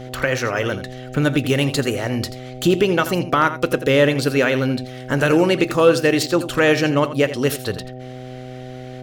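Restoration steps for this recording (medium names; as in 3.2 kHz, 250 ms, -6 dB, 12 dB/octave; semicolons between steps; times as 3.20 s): clip repair -4.5 dBFS; de-hum 127.2 Hz, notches 6; inverse comb 84 ms -13 dB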